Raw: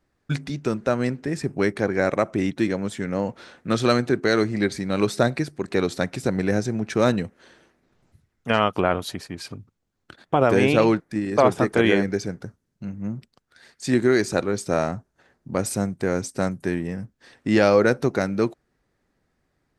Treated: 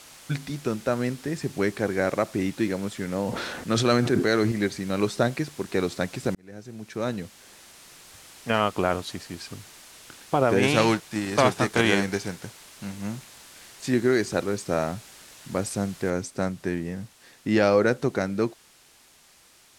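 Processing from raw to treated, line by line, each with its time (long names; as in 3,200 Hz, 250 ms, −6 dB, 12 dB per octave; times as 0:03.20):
0:03.18–0:04.52: level that may fall only so fast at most 30 dB per second
0:06.35–0:08.52: fade in equal-power
0:10.62–0:13.87: spectral envelope flattened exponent 0.6
0:16.10: noise floor change −42 dB −50 dB
whole clip: low-pass filter 10,000 Hz 12 dB per octave; level −3 dB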